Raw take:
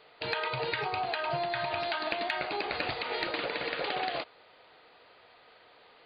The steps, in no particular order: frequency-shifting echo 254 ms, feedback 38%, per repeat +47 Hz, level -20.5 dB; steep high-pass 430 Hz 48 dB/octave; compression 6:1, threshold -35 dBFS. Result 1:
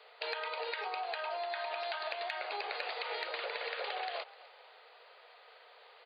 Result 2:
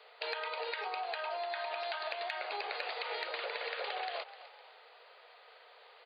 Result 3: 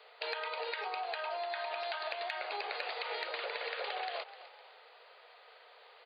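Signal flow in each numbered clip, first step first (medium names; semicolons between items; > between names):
steep high-pass > compression > frequency-shifting echo; steep high-pass > frequency-shifting echo > compression; frequency-shifting echo > steep high-pass > compression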